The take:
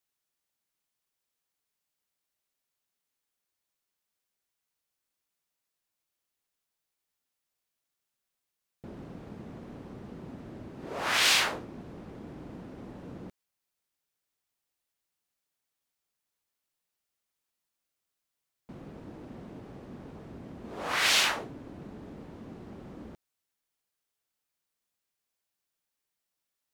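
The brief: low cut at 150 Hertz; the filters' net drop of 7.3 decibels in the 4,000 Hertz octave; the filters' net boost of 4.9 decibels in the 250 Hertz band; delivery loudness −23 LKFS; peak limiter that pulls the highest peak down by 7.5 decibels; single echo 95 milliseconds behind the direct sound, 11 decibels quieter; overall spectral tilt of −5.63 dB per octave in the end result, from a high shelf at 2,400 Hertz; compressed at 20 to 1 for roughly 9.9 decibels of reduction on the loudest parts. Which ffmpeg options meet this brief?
ffmpeg -i in.wav -af "highpass=150,equalizer=frequency=250:width_type=o:gain=7,highshelf=frequency=2400:gain=-4.5,equalizer=frequency=4000:width_type=o:gain=-5.5,acompressor=threshold=-34dB:ratio=20,alimiter=level_in=10dB:limit=-24dB:level=0:latency=1,volume=-10dB,aecho=1:1:95:0.282,volume=20dB" out.wav

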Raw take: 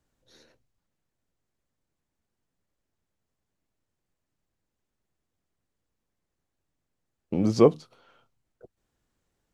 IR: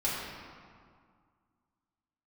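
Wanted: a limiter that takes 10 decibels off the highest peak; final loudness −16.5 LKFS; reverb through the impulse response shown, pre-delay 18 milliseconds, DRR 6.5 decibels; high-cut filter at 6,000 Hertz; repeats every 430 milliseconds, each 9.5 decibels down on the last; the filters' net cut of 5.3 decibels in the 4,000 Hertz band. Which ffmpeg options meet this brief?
-filter_complex "[0:a]lowpass=6000,equalizer=frequency=4000:width_type=o:gain=-5.5,alimiter=limit=-15dB:level=0:latency=1,aecho=1:1:430|860|1290|1720:0.335|0.111|0.0365|0.012,asplit=2[link_01][link_02];[1:a]atrim=start_sample=2205,adelay=18[link_03];[link_02][link_03]afir=irnorm=-1:irlink=0,volume=-14.5dB[link_04];[link_01][link_04]amix=inputs=2:normalize=0,volume=13dB"

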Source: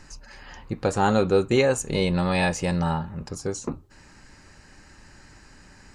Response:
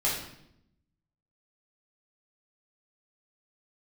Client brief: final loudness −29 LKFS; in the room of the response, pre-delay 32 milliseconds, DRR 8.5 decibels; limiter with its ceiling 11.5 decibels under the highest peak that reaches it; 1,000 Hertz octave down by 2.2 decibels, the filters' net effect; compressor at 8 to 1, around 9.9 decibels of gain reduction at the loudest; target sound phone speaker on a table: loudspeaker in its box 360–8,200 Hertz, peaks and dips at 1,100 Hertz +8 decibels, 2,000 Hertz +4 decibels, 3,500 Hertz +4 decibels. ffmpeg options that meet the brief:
-filter_complex "[0:a]equalizer=frequency=1000:width_type=o:gain=-6,acompressor=threshold=-26dB:ratio=8,alimiter=level_in=4dB:limit=-24dB:level=0:latency=1,volume=-4dB,asplit=2[link_01][link_02];[1:a]atrim=start_sample=2205,adelay=32[link_03];[link_02][link_03]afir=irnorm=-1:irlink=0,volume=-18dB[link_04];[link_01][link_04]amix=inputs=2:normalize=0,highpass=frequency=360:width=0.5412,highpass=frequency=360:width=1.3066,equalizer=frequency=1100:width_type=q:width=4:gain=8,equalizer=frequency=2000:width_type=q:width=4:gain=4,equalizer=frequency=3500:width_type=q:width=4:gain=4,lowpass=frequency=8200:width=0.5412,lowpass=frequency=8200:width=1.3066,volume=11.5dB"

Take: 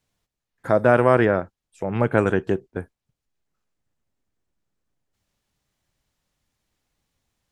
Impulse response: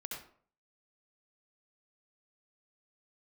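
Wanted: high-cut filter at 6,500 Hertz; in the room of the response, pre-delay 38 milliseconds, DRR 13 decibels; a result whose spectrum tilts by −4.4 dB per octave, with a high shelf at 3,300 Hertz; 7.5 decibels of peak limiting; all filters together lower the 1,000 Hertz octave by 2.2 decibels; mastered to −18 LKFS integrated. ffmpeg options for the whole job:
-filter_complex "[0:a]lowpass=6500,equalizer=frequency=1000:width_type=o:gain=-3.5,highshelf=frequency=3300:gain=3.5,alimiter=limit=-10.5dB:level=0:latency=1,asplit=2[link_01][link_02];[1:a]atrim=start_sample=2205,adelay=38[link_03];[link_02][link_03]afir=irnorm=-1:irlink=0,volume=-12dB[link_04];[link_01][link_04]amix=inputs=2:normalize=0,volume=7dB"

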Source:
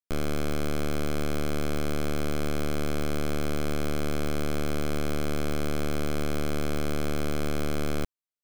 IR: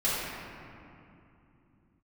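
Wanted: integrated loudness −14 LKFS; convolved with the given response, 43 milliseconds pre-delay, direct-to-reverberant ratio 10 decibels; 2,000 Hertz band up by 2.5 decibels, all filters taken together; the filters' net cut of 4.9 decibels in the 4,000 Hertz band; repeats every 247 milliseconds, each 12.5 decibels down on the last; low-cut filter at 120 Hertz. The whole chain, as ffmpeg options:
-filter_complex "[0:a]highpass=120,equalizer=frequency=2000:width_type=o:gain=5.5,equalizer=frequency=4000:width_type=o:gain=-8.5,aecho=1:1:247|494|741:0.237|0.0569|0.0137,asplit=2[link_01][link_02];[1:a]atrim=start_sample=2205,adelay=43[link_03];[link_02][link_03]afir=irnorm=-1:irlink=0,volume=-21.5dB[link_04];[link_01][link_04]amix=inputs=2:normalize=0,volume=17.5dB"

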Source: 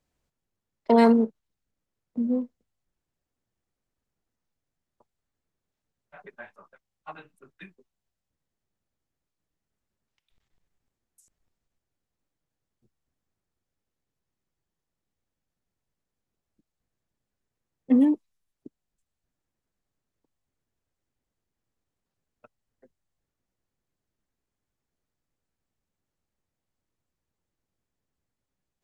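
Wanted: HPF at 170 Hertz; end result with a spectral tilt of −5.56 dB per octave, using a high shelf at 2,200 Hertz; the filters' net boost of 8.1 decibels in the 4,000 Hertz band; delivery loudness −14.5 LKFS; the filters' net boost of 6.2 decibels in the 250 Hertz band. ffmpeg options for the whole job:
ffmpeg -i in.wav -af "highpass=170,equalizer=frequency=250:width_type=o:gain=7.5,highshelf=frequency=2200:gain=5.5,equalizer=frequency=4000:width_type=o:gain=4.5,volume=3dB" out.wav

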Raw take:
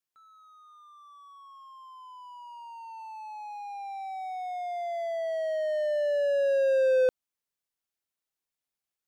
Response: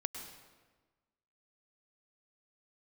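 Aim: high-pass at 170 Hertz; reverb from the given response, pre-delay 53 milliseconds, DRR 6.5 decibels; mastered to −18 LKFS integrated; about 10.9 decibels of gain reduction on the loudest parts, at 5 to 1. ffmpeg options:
-filter_complex "[0:a]highpass=170,acompressor=threshold=-34dB:ratio=5,asplit=2[link_01][link_02];[1:a]atrim=start_sample=2205,adelay=53[link_03];[link_02][link_03]afir=irnorm=-1:irlink=0,volume=-7dB[link_04];[link_01][link_04]amix=inputs=2:normalize=0,volume=19dB"

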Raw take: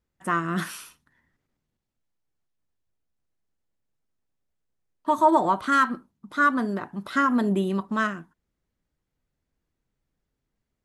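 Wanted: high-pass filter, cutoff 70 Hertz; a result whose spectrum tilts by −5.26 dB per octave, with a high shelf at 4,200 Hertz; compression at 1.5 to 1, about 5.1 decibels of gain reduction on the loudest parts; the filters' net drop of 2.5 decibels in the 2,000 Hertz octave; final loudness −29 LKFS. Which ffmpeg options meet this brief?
ffmpeg -i in.wav -af "highpass=70,equalizer=frequency=2000:width_type=o:gain=-4.5,highshelf=frequency=4200:gain=4,acompressor=threshold=-28dB:ratio=1.5,volume=-0.5dB" out.wav

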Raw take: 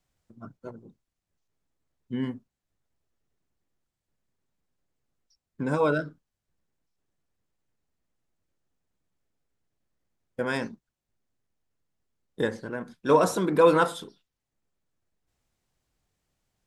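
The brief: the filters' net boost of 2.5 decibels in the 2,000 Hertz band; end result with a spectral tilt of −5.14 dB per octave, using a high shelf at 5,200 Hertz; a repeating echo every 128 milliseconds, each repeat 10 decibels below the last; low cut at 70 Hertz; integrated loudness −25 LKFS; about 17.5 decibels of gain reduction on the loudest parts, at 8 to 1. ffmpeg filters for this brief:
ffmpeg -i in.wav -af "highpass=70,equalizer=frequency=2000:width_type=o:gain=4.5,highshelf=frequency=5200:gain=-6,acompressor=threshold=-32dB:ratio=8,aecho=1:1:128|256|384|512:0.316|0.101|0.0324|0.0104,volume=13.5dB" out.wav

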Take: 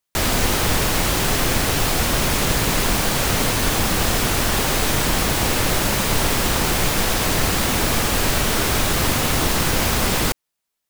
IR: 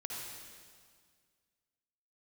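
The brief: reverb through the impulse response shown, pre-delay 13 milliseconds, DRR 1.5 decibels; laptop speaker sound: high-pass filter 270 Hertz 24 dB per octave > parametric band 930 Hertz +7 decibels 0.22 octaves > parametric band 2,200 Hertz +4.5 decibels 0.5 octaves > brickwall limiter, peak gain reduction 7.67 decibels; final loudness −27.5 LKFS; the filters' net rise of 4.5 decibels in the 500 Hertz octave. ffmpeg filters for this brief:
-filter_complex "[0:a]equalizer=frequency=500:width_type=o:gain=5.5,asplit=2[link_01][link_02];[1:a]atrim=start_sample=2205,adelay=13[link_03];[link_02][link_03]afir=irnorm=-1:irlink=0,volume=-2dB[link_04];[link_01][link_04]amix=inputs=2:normalize=0,highpass=frequency=270:width=0.5412,highpass=frequency=270:width=1.3066,equalizer=frequency=930:width_type=o:width=0.22:gain=7,equalizer=frequency=2200:width_type=o:width=0.5:gain=4.5,volume=-8dB,alimiter=limit=-19dB:level=0:latency=1"

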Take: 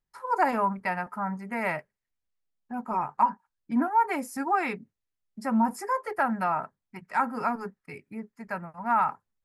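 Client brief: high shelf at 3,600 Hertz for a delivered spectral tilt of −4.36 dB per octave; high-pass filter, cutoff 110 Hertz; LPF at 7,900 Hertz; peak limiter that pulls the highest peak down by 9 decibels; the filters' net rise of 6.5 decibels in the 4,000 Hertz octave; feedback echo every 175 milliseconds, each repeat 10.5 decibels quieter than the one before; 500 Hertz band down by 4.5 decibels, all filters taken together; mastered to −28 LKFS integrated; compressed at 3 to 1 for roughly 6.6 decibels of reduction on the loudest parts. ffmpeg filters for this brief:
ffmpeg -i in.wav -af "highpass=110,lowpass=7900,equalizer=frequency=500:width_type=o:gain=-6.5,highshelf=frequency=3600:gain=8.5,equalizer=frequency=4000:width_type=o:gain=3,acompressor=threshold=-27dB:ratio=3,alimiter=level_in=1.5dB:limit=-24dB:level=0:latency=1,volume=-1.5dB,aecho=1:1:175|350|525:0.299|0.0896|0.0269,volume=7.5dB" out.wav

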